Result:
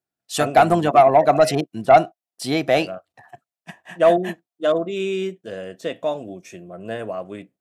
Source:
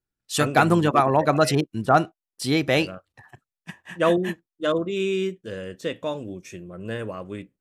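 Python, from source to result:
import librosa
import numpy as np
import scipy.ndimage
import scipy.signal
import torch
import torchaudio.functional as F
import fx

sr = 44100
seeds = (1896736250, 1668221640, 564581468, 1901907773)

y = scipy.signal.sosfilt(scipy.signal.butter(2, 140.0, 'highpass', fs=sr, output='sos'), x)
y = fx.peak_eq(y, sr, hz=690.0, db=15.0, octaves=0.3)
y = 10.0 ** (-4.0 / 20.0) * np.tanh(y / 10.0 ** (-4.0 / 20.0))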